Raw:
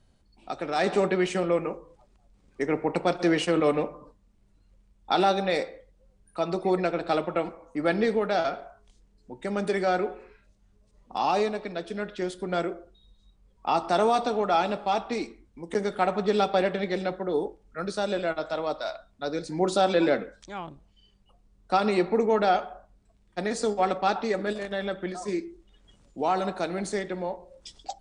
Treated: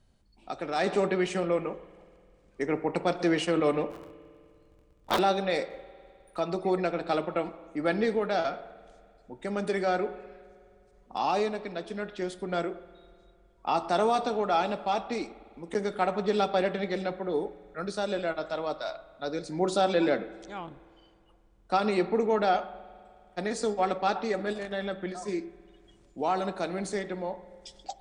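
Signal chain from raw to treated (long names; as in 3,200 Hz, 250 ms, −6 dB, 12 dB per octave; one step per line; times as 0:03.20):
0:03.90–0:05.19: sub-harmonics by changed cycles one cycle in 3, inverted
0:05.70–0:06.40: leveller curve on the samples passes 1
spring reverb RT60 2.4 s, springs 51 ms, chirp 60 ms, DRR 18 dB
level −2.5 dB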